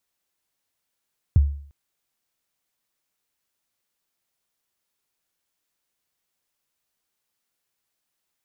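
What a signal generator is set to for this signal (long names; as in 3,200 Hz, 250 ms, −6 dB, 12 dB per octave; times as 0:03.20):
synth kick length 0.35 s, from 130 Hz, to 71 Hz, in 21 ms, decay 0.53 s, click off, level −9 dB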